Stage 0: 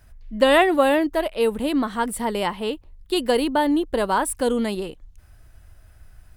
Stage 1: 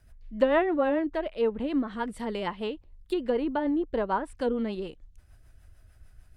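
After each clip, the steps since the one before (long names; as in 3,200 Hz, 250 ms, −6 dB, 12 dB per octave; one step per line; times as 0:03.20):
rotating-speaker cabinet horn 6.7 Hz
treble cut that deepens with the level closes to 1,700 Hz, closed at −19 dBFS
level −4.5 dB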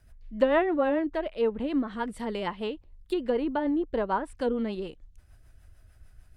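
no processing that can be heard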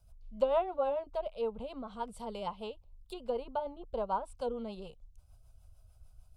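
phaser with its sweep stopped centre 750 Hz, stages 4
level −3.5 dB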